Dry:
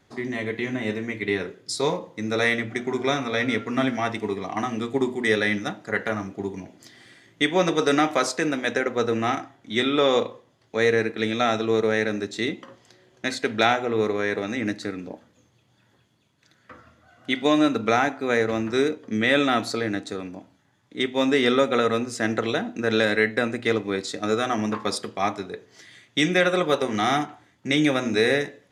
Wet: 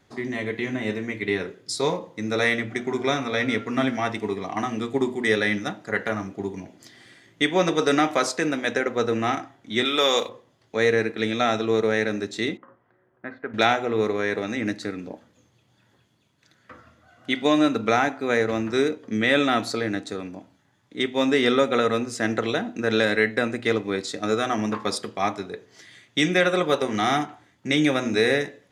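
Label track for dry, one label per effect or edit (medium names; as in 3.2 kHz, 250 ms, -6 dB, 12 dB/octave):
9.850000	10.290000	RIAA curve recording
12.570000	13.540000	four-pole ladder low-pass 1.7 kHz, resonance 40%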